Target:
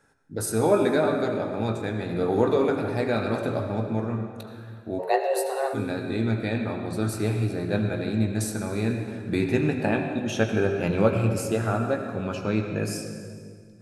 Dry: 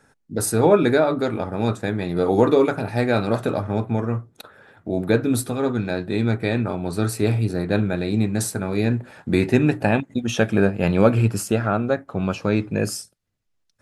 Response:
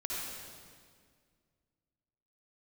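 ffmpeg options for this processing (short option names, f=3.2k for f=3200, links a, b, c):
-filter_complex "[0:a]asplit=2[a][b];[1:a]atrim=start_sample=2205,highshelf=f=10k:g=-11,adelay=18[c];[b][c]afir=irnorm=-1:irlink=0,volume=-6.5dB[d];[a][d]amix=inputs=2:normalize=0,flanger=delay=2:depth=6.5:regen=-85:speed=0.18:shape=sinusoidal,asplit=3[e][f][g];[e]afade=t=out:st=4.98:d=0.02[h];[f]afreqshift=270,afade=t=in:st=4.98:d=0.02,afade=t=out:st=5.73:d=0.02[i];[g]afade=t=in:st=5.73:d=0.02[j];[h][i][j]amix=inputs=3:normalize=0,bandreject=f=60:t=h:w=6,bandreject=f=120:t=h:w=6,bandreject=f=180:t=h:w=6,volume=-1.5dB"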